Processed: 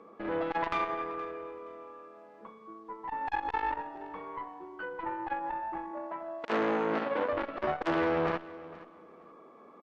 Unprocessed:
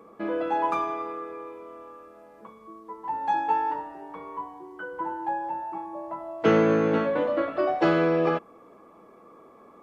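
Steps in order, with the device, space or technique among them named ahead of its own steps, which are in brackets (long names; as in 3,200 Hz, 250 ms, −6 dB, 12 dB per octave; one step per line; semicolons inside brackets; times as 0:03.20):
valve radio (band-pass filter 150–4,300 Hz; tube saturation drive 22 dB, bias 0.75; saturating transformer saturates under 850 Hz)
0:05.91–0:07.32: high-pass filter 210 Hz 12 dB per octave
high-shelf EQ 5,100 Hz +4.5 dB
repeating echo 471 ms, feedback 20%, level −18.5 dB
level +2 dB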